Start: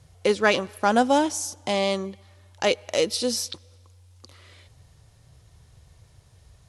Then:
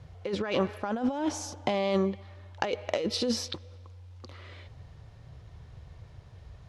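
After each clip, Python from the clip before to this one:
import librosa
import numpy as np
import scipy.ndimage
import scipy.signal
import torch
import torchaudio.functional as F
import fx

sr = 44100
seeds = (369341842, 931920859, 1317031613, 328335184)

y = fx.high_shelf(x, sr, hz=4500.0, db=-8.5)
y = fx.over_compress(y, sr, threshold_db=-28.0, ratio=-1.0)
y = fx.peak_eq(y, sr, hz=10000.0, db=-15.0, octaves=1.2)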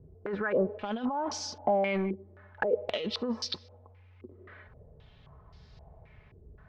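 y = x + 0.49 * np.pad(x, (int(4.7 * sr / 1000.0), 0))[:len(x)]
y = 10.0 ** (-18.5 / 20.0) * np.tanh(y / 10.0 ** (-18.5 / 20.0))
y = fx.filter_held_lowpass(y, sr, hz=3.8, low_hz=360.0, high_hz=4800.0)
y = y * 10.0 ** (-4.5 / 20.0)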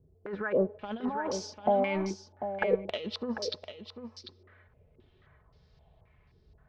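y = x + 10.0 ** (-6.5 / 20.0) * np.pad(x, (int(745 * sr / 1000.0), 0))[:len(x)]
y = fx.upward_expand(y, sr, threshold_db=-44.0, expansion=1.5)
y = y * 10.0 ** (1.5 / 20.0)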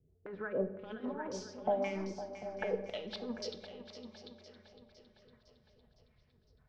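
y = fx.rotary(x, sr, hz=6.3)
y = fx.echo_feedback(y, sr, ms=508, feedback_pct=57, wet_db=-12.5)
y = fx.room_shoebox(y, sr, seeds[0], volume_m3=340.0, walls='mixed', distance_m=0.39)
y = y * 10.0 ** (-6.0 / 20.0)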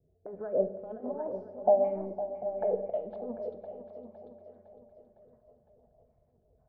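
y = fx.lowpass_res(x, sr, hz=670.0, q=4.8)
y = y * 10.0 ** (-1.5 / 20.0)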